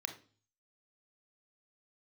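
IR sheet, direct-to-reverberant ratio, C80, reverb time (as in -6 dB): 6.0 dB, 16.5 dB, 0.40 s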